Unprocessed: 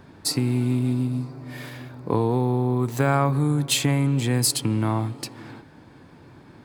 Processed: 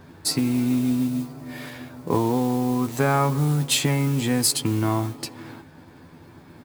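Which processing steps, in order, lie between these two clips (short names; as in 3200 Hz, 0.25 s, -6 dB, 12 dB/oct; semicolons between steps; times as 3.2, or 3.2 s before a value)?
modulation noise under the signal 22 dB; doubler 12 ms -5.5 dB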